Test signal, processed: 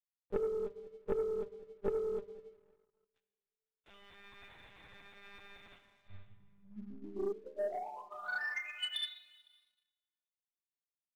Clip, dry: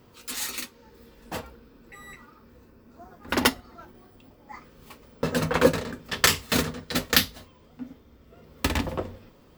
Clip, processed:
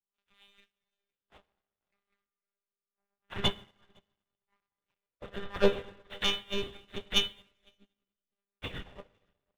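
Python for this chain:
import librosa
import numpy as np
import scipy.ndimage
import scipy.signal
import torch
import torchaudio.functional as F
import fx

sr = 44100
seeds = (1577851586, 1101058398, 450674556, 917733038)

p1 = fx.freq_snap(x, sr, grid_st=3)
p2 = fx.hum_notches(p1, sr, base_hz=60, count=3)
p3 = fx.dynamic_eq(p2, sr, hz=1900.0, q=0.81, threshold_db=-37.0, ratio=4.0, max_db=-4)
p4 = fx.env_flanger(p3, sr, rest_ms=6.2, full_db=-17.0)
p5 = fx.lpc_monotone(p4, sr, seeds[0], pitch_hz=200.0, order=10)
p6 = p5 + fx.echo_single(p5, sr, ms=507, db=-16.5, dry=0)
p7 = fx.rev_plate(p6, sr, seeds[1], rt60_s=2.1, hf_ratio=0.8, predelay_ms=0, drr_db=4.5)
p8 = fx.leveller(p7, sr, passes=2)
p9 = fx.upward_expand(p8, sr, threshold_db=-34.0, expansion=2.5)
y = p9 * librosa.db_to_amplitude(-6.5)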